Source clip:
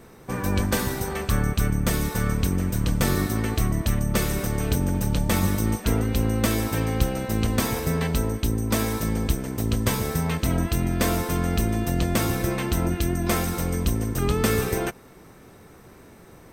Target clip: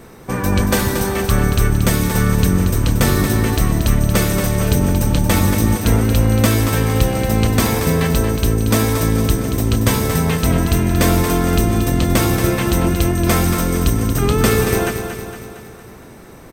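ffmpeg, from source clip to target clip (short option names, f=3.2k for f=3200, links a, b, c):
-af "acontrast=67,aecho=1:1:230|460|690|920|1150|1380:0.398|0.215|0.116|0.0627|0.0339|0.0183,volume=1dB"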